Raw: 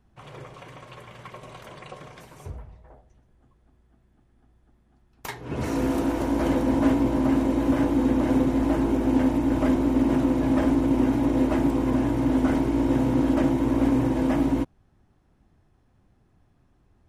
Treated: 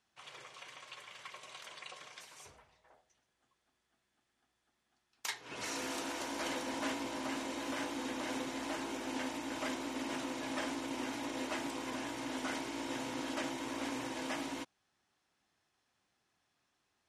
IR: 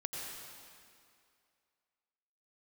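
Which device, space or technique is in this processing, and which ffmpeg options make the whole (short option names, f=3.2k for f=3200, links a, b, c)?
piezo pickup straight into a mixer: -af "lowpass=5.7k,aderivative,volume=8dB"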